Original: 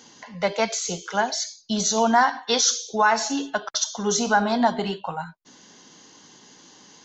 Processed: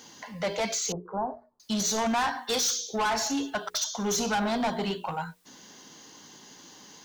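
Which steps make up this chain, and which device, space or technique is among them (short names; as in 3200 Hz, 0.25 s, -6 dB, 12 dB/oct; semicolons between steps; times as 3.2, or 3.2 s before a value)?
notches 60/120/180/240/300/360/420/480 Hz; open-reel tape (soft clip -23.5 dBFS, distortion -6 dB; bell 60 Hz +3.5 dB; white noise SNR 37 dB); 0.92–1.6 elliptic low-pass 1100 Hz, stop band 60 dB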